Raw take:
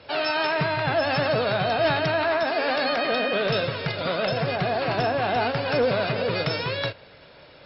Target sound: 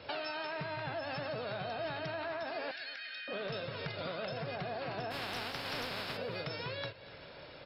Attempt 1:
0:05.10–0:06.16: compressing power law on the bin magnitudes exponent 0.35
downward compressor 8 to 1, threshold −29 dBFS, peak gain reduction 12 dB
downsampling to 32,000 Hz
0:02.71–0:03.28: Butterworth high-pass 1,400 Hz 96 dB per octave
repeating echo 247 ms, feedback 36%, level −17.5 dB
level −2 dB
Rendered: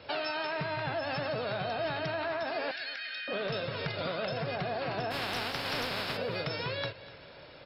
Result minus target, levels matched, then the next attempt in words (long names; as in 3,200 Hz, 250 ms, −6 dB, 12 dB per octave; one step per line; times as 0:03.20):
downward compressor: peak gain reduction −5.5 dB
0:05.10–0:06.16: compressing power law on the bin magnitudes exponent 0.35
downward compressor 8 to 1, threshold −35 dBFS, peak gain reduction 17 dB
downsampling to 32,000 Hz
0:02.71–0:03.28: Butterworth high-pass 1,400 Hz 96 dB per octave
repeating echo 247 ms, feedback 36%, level −17.5 dB
level −2 dB